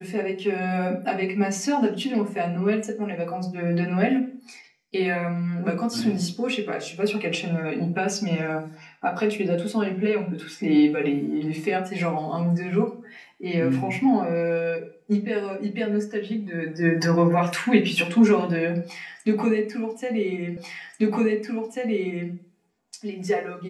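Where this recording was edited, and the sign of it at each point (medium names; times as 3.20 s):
20.57 s: repeat of the last 1.74 s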